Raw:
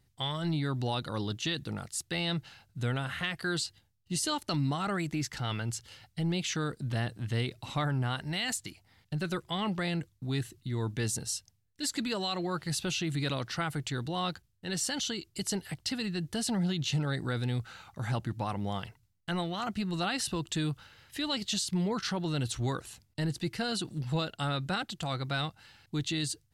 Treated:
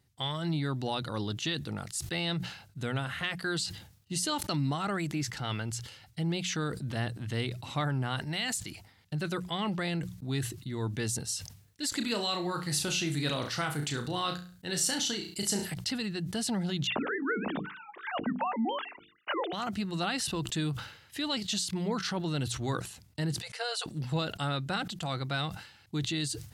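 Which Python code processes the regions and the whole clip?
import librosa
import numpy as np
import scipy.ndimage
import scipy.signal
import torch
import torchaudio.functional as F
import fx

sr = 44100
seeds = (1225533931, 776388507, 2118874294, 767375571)

y = fx.chain(x, sr, fx.high_shelf(hz=6000.0, db=5.5),
    fx.room_flutter(wall_m=5.8, rt60_s=0.3), at=(11.97, 15.74))
y = fx.chain(y, sr, fx.sine_speech(),
    fx.hum_notches(base_hz=50, count=9), at=(16.87, 19.53))
y = fx.chain(y, sr, fx.brickwall_highpass(low_hz=430.0),
    fx.resample_bad(factor=2, down='none', up='filtered'), at=(23.42, 23.86))
y = scipy.signal.sosfilt(scipy.signal.butter(2, 58.0, 'highpass', fs=sr, output='sos'), y)
y = fx.hum_notches(y, sr, base_hz=60, count=3)
y = fx.sustainer(y, sr, db_per_s=90.0)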